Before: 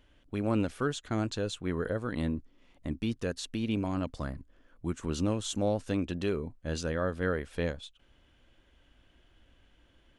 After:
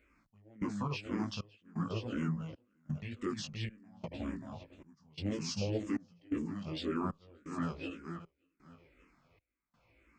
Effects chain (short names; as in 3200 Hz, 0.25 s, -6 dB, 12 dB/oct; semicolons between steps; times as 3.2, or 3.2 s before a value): regenerating reverse delay 0.292 s, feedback 45%, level -7 dB; HPF 140 Hz 6 dB/oct; in parallel at -11 dB: soft clip -28 dBFS, distortion -12 dB; on the sum: chorus 0.49 Hz, delay 17.5 ms, depth 2.7 ms; step gate "xxx....xxxxxx" 171 bpm -24 dB; formant shift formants -5 st; endless phaser -1.9 Hz; gain +1 dB